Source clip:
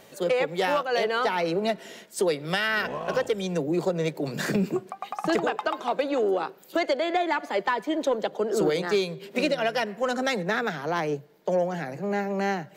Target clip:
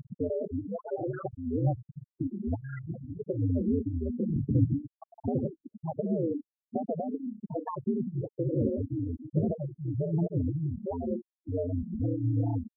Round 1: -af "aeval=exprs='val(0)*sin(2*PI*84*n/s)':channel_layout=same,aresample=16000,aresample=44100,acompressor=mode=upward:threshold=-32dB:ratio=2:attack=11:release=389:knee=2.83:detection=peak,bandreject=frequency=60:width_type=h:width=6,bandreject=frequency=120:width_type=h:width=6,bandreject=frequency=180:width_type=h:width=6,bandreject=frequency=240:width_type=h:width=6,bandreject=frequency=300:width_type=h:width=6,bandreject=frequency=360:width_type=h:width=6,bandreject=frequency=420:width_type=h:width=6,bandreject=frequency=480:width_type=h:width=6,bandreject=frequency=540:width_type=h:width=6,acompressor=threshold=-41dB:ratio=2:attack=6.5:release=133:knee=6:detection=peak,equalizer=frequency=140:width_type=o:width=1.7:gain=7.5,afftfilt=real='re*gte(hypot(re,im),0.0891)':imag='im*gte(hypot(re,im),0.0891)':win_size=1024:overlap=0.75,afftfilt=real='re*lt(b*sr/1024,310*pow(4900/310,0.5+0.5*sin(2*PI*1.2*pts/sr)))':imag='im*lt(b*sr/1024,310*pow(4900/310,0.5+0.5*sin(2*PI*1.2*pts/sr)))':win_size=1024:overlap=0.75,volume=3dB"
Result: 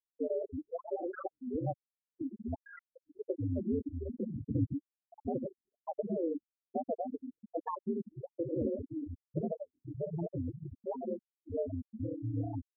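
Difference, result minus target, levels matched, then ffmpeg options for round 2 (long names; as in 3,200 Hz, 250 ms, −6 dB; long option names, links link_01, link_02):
125 Hz band −4.0 dB
-af "aeval=exprs='val(0)*sin(2*PI*84*n/s)':channel_layout=same,aresample=16000,aresample=44100,acompressor=mode=upward:threshold=-32dB:ratio=2:attack=11:release=389:knee=2.83:detection=peak,bandreject=frequency=60:width_type=h:width=6,bandreject=frequency=120:width_type=h:width=6,bandreject=frequency=180:width_type=h:width=6,bandreject=frequency=240:width_type=h:width=6,bandreject=frequency=300:width_type=h:width=6,bandreject=frequency=360:width_type=h:width=6,bandreject=frequency=420:width_type=h:width=6,bandreject=frequency=480:width_type=h:width=6,bandreject=frequency=540:width_type=h:width=6,acompressor=threshold=-41dB:ratio=2:attack=6.5:release=133:knee=6:detection=peak,equalizer=frequency=140:width_type=o:width=1.7:gain=17.5,afftfilt=real='re*gte(hypot(re,im),0.0891)':imag='im*gte(hypot(re,im),0.0891)':win_size=1024:overlap=0.75,afftfilt=real='re*lt(b*sr/1024,310*pow(4900/310,0.5+0.5*sin(2*PI*1.2*pts/sr)))':imag='im*lt(b*sr/1024,310*pow(4900/310,0.5+0.5*sin(2*PI*1.2*pts/sr)))':win_size=1024:overlap=0.75,volume=3dB"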